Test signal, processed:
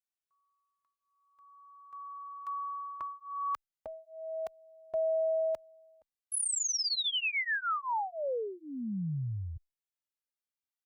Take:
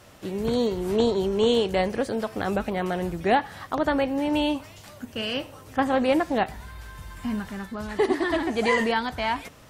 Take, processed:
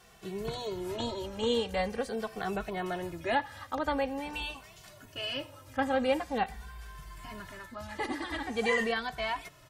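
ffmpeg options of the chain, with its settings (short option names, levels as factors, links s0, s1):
-filter_complex "[0:a]equalizer=f=250:t=o:w=2.3:g=-5.5,asplit=2[s0][s1];[s1]adelay=2.2,afreqshift=-0.45[s2];[s0][s2]amix=inputs=2:normalize=1,volume=0.794"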